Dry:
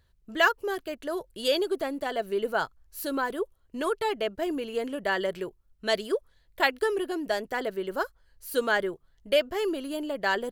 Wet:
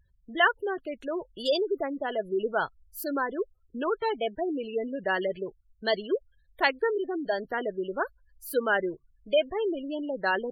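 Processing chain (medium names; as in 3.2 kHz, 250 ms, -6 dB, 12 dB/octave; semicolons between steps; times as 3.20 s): vibrato 0.76 Hz 69 cents; spectral gate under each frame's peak -20 dB strong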